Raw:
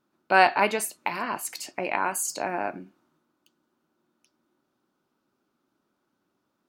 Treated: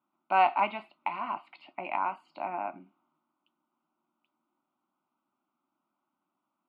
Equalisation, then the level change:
band-pass filter 290–3,100 Hz
high-frequency loss of the air 320 metres
phaser with its sweep stopped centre 1,700 Hz, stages 6
0.0 dB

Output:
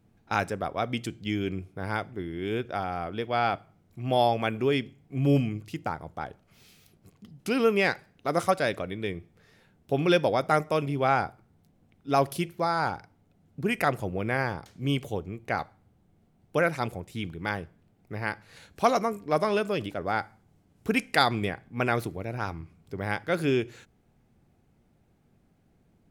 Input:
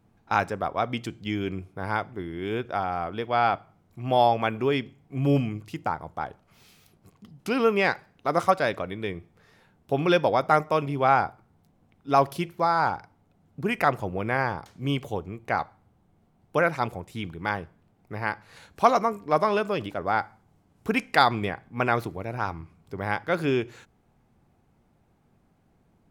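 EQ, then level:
dynamic equaliser 9,900 Hz, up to +6 dB, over −53 dBFS, Q 1.1
parametric band 1,000 Hz −6.5 dB 0.98 octaves
0.0 dB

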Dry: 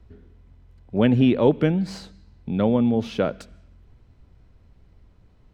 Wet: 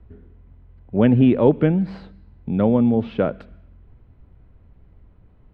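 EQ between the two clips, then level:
high-frequency loss of the air 450 metres
+3.5 dB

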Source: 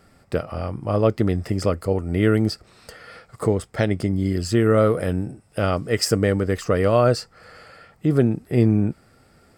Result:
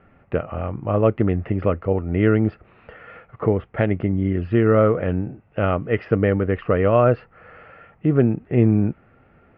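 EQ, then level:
elliptic low-pass filter 2,800 Hz, stop band 70 dB
high-frequency loss of the air 110 metres
+2.0 dB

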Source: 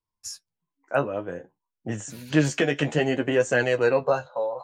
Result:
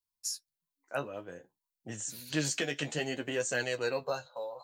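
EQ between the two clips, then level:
first-order pre-emphasis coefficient 0.8
parametric band 4,200 Hz +6.5 dB 0.43 octaves
+1.5 dB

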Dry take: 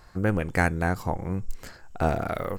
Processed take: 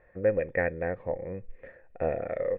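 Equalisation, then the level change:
formant resonators in series e
+8.0 dB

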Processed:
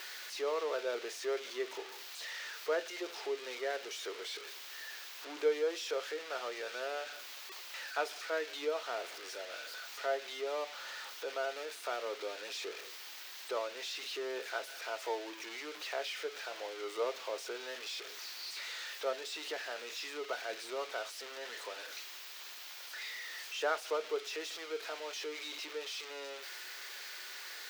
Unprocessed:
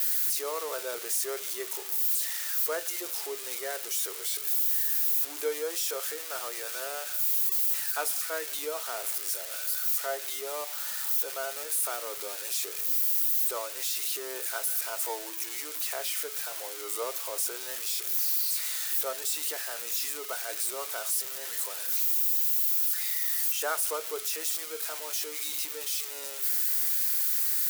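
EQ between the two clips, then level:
high-pass filter 210 Hz 12 dB per octave
dynamic equaliser 1,100 Hz, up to −5 dB, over −47 dBFS, Q 0.99
high-frequency loss of the air 220 metres
+2.5 dB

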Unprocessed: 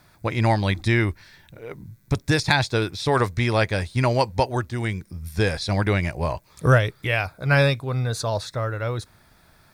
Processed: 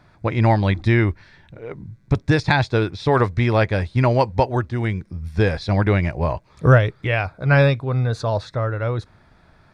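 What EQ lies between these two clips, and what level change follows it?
head-to-tape spacing loss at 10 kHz 21 dB
+4.5 dB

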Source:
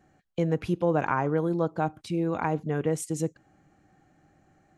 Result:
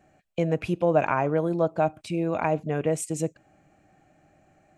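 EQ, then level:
thirty-one-band graphic EQ 630 Hz +10 dB, 2,500 Hz +9 dB, 8,000 Hz +5 dB
0.0 dB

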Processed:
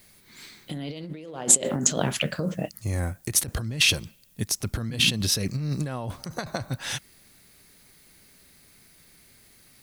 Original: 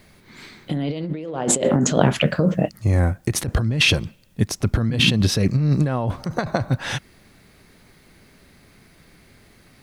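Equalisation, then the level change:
first-order pre-emphasis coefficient 0.8
+4.0 dB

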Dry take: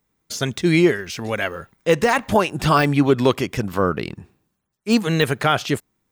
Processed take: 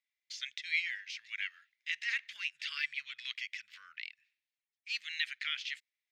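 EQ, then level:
elliptic high-pass filter 2,000 Hz, stop band 60 dB
high-frequency loss of the air 200 metres
−4.5 dB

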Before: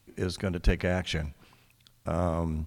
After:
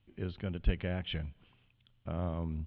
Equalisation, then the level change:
transistor ladder low-pass 3,400 Hz, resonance 70%
high-frequency loss of the air 250 metres
low-shelf EQ 320 Hz +7.5 dB
0.0 dB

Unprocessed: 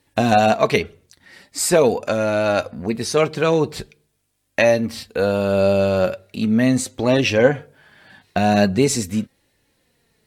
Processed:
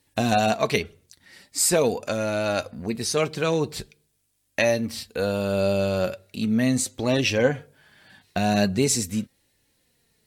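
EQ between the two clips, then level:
low-shelf EQ 320 Hz +4.5 dB
high-shelf EQ 2,900 Hz +9.5 dB
−8.0 dB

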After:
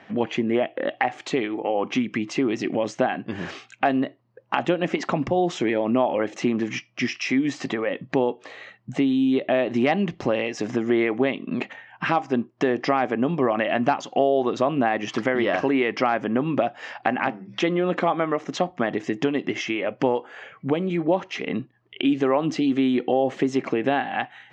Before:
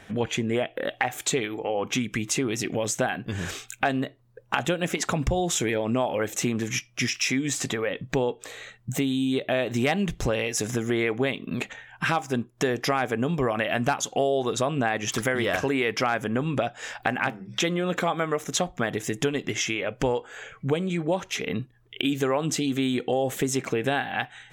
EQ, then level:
dynamic equaliser 350 Hz, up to +4 dB, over −35 dBFS, Q 0.95
loudspeaker in its box 210–4,200 Hz, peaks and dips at 450 Hz −7 dB, 1,500 Hz −6 dB, 2,400 Hz −4 dB, 3,600 Hz −10 dB
+4.0 dB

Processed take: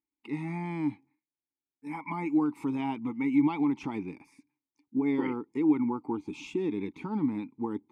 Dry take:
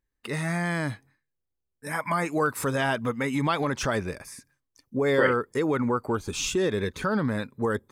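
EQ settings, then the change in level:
dynamic equaliser 160 Hz, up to +7 dB, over −43 dBFS, Q 1.1
formant filter u
high-shelf EQ 9,500 Hz +6.5 dB
+5.0 dB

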